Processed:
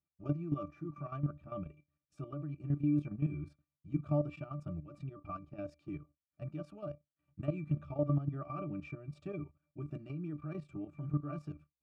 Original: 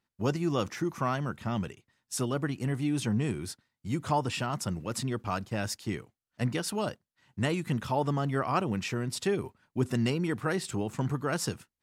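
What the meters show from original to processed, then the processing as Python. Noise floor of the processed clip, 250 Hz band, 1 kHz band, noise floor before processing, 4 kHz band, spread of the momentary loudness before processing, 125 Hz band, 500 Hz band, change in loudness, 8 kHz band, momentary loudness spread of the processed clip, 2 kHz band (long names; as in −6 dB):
below −85 dBFS, −7.0 dB, −15.0 dB, below −85 dBFS, below −30 dB, 7 LU, −5.0 dB, −10.0 dB, −8.0 dB, below −35 dB, 13 LU, −20.0 dB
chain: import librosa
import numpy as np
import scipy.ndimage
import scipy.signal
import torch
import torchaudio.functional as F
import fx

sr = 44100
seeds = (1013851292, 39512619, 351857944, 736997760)

y = fx.octave_resonator(x, sr, note='D', decay_s=0.15)
y = fx.level_steps(y, sr, step_db=11)
y = y * 10.0 ** (4.5 / 20.0)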